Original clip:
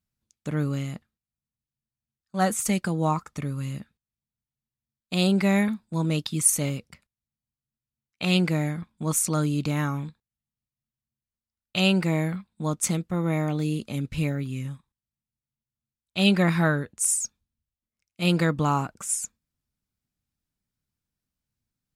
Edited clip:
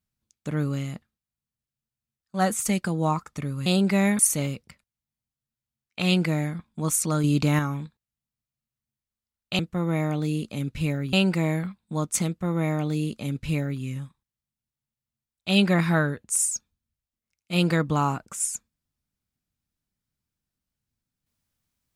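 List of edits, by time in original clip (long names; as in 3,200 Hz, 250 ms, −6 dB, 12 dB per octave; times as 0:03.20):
0:03.66–0:05.17: remove
0:05.70–0:06.42: remove
0:09.47–0:09.82: clip gain +4.5 dB
0:12.96–0:14.50: duplicate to 0:11.82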